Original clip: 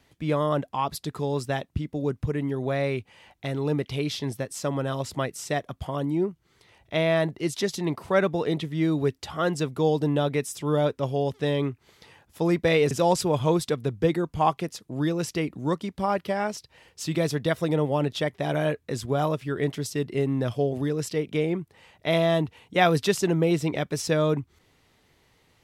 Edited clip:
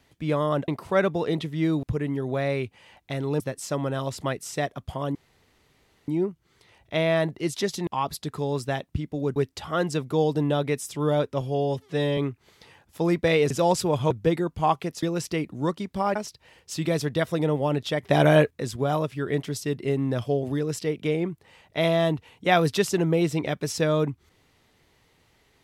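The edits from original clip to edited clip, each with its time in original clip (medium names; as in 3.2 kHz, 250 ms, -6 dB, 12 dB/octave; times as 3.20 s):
0.68–2.17 s: swap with 7.87–9.02 s
3.74–4.33 s: delete
6.08 s: insert room tone 0.93 s
11.07–11.58 s: stretch 1.5×
13.51–13.88 s: delete
14.80–15.06 s: delete
16.19–16.45 s: delete
18.32–18.80 s: gain +8 dB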